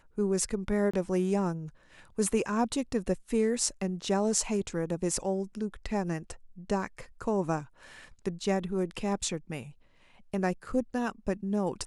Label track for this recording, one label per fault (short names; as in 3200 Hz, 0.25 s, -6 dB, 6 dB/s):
0.910000	0.940000	gap 25 ms